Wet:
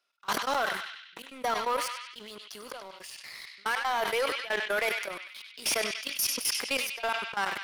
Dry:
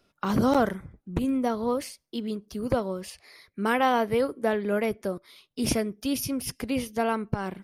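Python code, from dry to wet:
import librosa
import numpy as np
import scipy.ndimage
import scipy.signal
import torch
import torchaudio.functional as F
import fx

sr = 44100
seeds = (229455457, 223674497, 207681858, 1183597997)

y = scipy.signal.sosfilt(scipy.signal.butter(2, 1000.0, 'highpass', fs=sr, output='sos'), x)
y = fx.high_shelf(y, sr, hz=11000.0, db=-4.5)
y = fx.level_steps(y, sr, step_db=19)
y = fx.leveller(y, sr, passes=3)
y = fx.step_gate(y, sr, bpm=160, pattern='xx.x.xxxx', floor_db=-24.0, edge_ms=4.5)
y = fx.echo_banded(y, sr, ms=97, feedback_pct=76, hz=2900.0, wet_db=-11)
y = fx.sustainer(y, sr, db_per_s=56.0)
y = F.gain(torch.from_numpy(y), 2.5).numpy()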